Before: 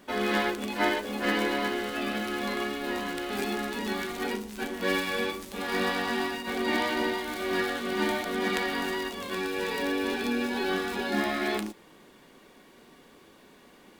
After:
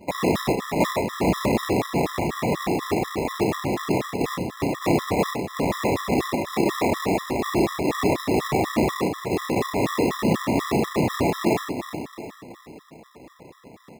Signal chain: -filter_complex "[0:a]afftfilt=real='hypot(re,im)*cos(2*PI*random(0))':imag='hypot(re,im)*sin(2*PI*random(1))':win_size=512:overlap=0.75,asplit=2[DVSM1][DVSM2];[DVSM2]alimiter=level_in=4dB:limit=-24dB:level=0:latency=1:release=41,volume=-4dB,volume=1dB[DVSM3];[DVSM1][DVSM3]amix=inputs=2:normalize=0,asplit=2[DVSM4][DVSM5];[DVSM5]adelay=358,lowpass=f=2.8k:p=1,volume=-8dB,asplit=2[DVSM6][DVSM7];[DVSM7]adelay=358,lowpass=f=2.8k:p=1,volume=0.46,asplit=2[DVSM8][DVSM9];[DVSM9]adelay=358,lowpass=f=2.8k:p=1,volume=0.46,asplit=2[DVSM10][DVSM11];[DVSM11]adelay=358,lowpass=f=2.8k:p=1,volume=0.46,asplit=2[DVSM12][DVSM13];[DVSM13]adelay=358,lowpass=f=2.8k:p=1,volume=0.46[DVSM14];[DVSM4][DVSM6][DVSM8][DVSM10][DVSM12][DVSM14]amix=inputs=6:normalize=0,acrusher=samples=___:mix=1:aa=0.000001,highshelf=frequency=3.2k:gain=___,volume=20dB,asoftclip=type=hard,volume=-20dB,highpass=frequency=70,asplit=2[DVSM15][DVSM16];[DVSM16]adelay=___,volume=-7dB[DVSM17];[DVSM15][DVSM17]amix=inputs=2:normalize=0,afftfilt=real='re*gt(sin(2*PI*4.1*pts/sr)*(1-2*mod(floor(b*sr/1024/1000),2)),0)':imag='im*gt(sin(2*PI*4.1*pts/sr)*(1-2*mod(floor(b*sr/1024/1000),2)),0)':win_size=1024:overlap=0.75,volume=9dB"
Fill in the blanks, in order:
29, -5, 32